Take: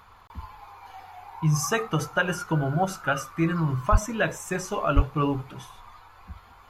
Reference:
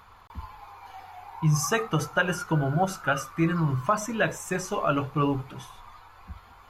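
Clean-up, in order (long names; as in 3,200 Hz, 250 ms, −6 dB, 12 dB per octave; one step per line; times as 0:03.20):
high-pass at the plosives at 0:03.91/0:04.95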